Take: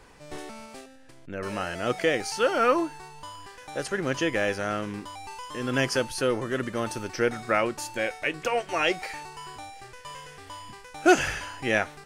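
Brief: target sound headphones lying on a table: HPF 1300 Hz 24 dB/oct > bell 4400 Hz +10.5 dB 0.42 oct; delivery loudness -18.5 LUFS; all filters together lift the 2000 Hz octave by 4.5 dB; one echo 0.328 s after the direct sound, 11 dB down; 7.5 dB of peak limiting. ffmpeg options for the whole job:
-af "equalizer=f=2k:t=o:g=6,alimiter=limit=-14dB:level=0:latency=1,highpass=f=1.3k:w=0.5412,highpass=f=1.3k:w=1.3066,equalizer=f=4.4k:t=o:w=0.42:g=10.5,aecho=1:1:328:0.282,volume=11dB"

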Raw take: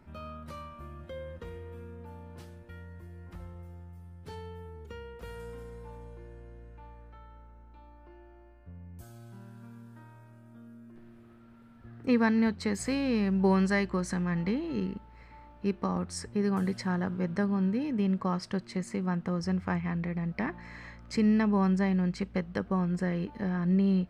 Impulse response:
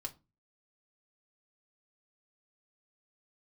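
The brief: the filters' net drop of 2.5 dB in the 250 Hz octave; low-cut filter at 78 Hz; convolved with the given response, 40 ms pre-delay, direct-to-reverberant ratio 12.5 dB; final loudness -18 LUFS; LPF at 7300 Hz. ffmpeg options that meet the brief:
-filter_complex "[0:a]highpass=78,lowpass=7.3k,equalizer=f=250:t=o:g=-3.5,asplit=2[a][b];[1:a]atrim=start_sample=2205,adelay=40[c];[b][c]afir=irnorm=-1:irlink=0,volume=-10.5dB[d];[a][d]amix=inputs=2:normalize=0,volume=14dB"

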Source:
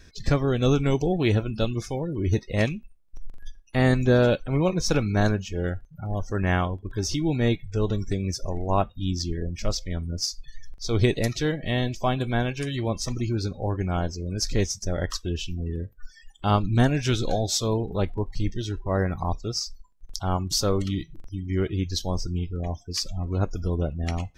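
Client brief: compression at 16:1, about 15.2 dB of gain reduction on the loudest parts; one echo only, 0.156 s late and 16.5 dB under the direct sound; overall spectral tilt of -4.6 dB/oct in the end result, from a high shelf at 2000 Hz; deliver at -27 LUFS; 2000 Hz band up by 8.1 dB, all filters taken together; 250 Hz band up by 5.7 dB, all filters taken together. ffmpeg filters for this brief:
-af "equalizer=f=250:t=o:g=7,highshelf=f=2k:g=6,equalizer=f=2k:t=o:g=6.5,acompressor=threshold=-25dB:ratio=16,aecho=1:1:156:0.15,volume=3.5dB"

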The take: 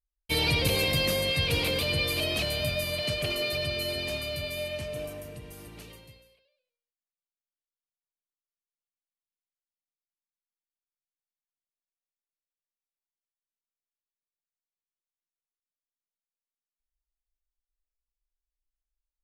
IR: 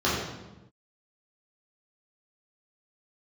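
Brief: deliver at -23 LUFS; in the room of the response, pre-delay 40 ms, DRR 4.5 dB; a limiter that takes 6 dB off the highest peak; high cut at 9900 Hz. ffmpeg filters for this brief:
-filter_complex "[0:a]lowpass=9.9k,alimiter=limit=-19.5dB:level=0:latency=1,asplit=2[a][b];[1:a]atrim=start_sample=2205,adelay=40[c];[b][c]afir=irnorm=-1:irlink=0,volume=-20dB[d];[a][d]amix=inputs=2:normalize=0,volume=4.5dB"

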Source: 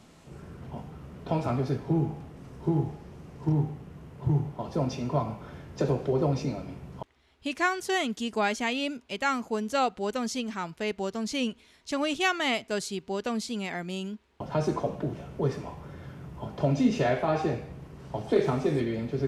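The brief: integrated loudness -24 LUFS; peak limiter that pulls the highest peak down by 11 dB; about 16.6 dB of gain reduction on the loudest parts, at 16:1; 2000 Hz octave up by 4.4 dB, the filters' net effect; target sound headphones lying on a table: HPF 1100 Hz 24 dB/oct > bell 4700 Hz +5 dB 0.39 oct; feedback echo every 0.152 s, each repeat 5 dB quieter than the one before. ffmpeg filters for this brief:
-af "equalizer=f=2k:t=o:g=5.5,acompressor=threshold=-34dB:ratio=16,alimiter=level_in=7dB:limit=-24dB:level=0:latency=1,volume=-7dB,highpass=f=1.1k:w=0.5412,highpass=f=1.1k:w=1.3066,equalizer=f=4.7k:t=o:w=0.39:g=5,aecho=1:1:152|304|456|608|760|912|1064:0.562|0.315|0.176|0.0988|0.0553|0.031|0.0173,volume=21dB"

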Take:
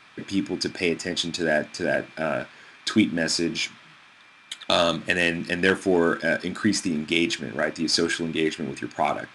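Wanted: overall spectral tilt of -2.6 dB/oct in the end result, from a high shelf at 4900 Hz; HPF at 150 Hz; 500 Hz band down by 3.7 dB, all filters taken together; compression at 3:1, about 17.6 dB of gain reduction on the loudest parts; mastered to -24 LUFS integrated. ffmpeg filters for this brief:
-af "highpass=150,equalizer=f=500:t=o:g=-5,highshelf=f=4.9k:g=5.5,acompressor=threshold=-41dB:ratio=3,volume=15.5dB"

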